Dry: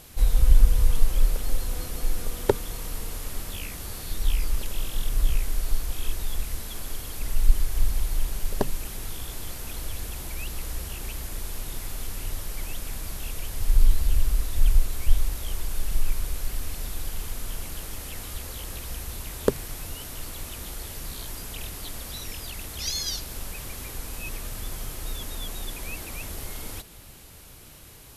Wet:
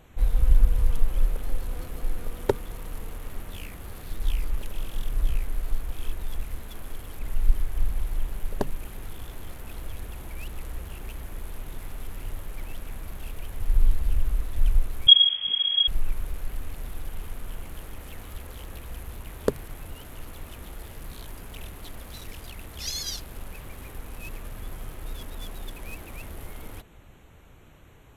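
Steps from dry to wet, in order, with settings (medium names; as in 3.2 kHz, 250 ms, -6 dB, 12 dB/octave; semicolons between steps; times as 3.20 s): local Wiener filter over 9 samples; vibrato 9.4 Hz 39 cents; 15.07–15.88 s: frequency inversion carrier 3.3 kHz; trim -2 dB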